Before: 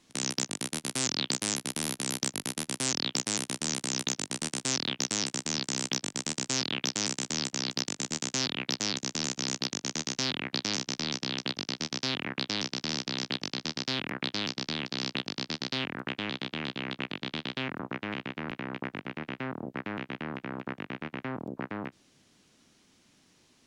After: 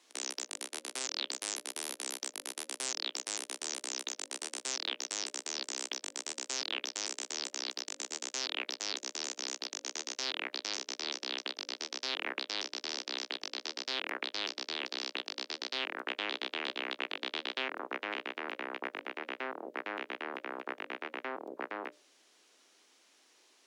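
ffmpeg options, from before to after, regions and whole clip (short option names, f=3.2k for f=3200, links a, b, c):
-filter_complex "[0:a]asettb=1/sr,asplit=3[a][b][c];[a]atrim=end=0.654[d];[b]atrim=start=0.65:end=1.14,asetpts=PTS-STARTPTS,afade=t=in:d=0.004:c=qsin,afade=t=out:st=0.486:d=0.004:c=qsin,tremolo=f=30:d=0.4,highshelf=f=9.5k:g=-5[e];[c]atrim=start=1.136[f];[d][e]acrossfade=d=0.004:c1=hsin:c2=qsin[g];[g][f]acrossfade=d=0.004:c1=qsin:c2=hsin,highpass=f=370:w=0.5412,highpass=f=370:w=1.3066,bandreject=f=60:t=h:w=6,bandreject=f=120:t=h:w=6,bandreject=f=180:t=h:w=6,bandreject=f=240:t=h:w=6,bandreject=f=300:t=h:w=6,bandreject=f=360:t=h:w=6,bandreject=f=420:t=h:w=6,bandreject=f=480:t=h:w=6,bandreject=f=540:t=h:w=6,bandreject=f=600:t=h:w=6,alimiter=limit=-18dB:level=0:latency=1:release=174"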